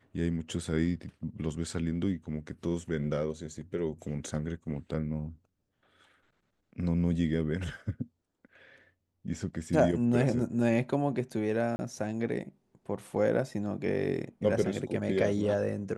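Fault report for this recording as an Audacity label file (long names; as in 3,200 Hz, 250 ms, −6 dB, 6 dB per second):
11.760000	11.790000	drop-out 30 ms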